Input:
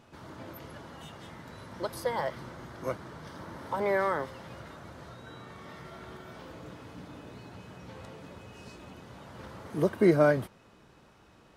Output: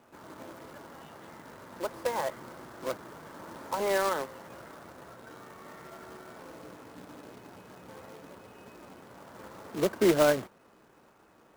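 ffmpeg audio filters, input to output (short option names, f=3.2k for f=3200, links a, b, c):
-filter_complex "[0:a]acrossover=split=210 2400:gain=0.251 1 0.0794[a][b][c];[a][b][c]amix=inputs=3:normalize=0,acrusher=bits=2:mode=log:mix=0:aa=0.000001"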